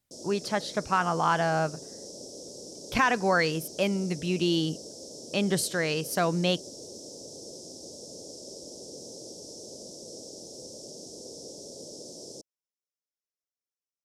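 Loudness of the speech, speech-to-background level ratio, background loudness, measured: −27.5 LKFS, 15.0 dB, −42.5 LKFS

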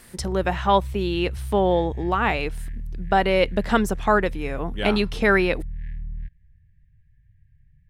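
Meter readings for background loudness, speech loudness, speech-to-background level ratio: −35.0 LKFS, −22.5 LKFS, 12.5 dB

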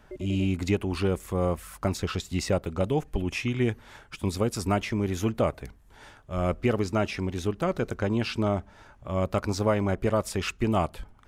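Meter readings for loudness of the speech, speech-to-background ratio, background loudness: −28.5 LKFS, 14.5 dB, −43.0 LKFS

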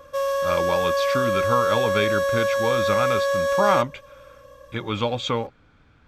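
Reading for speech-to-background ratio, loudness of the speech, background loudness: −3.5 dB, −26.0 LKFS, −22.5 LKFS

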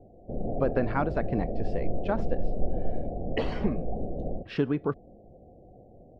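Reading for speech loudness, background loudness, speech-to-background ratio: −32.0 LKFS, −35.0 LKFS, 3.0 dB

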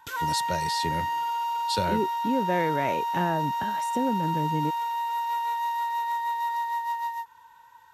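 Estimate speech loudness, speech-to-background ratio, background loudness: −30.0 LKFS, −1.5 dB, −28.5 LKFS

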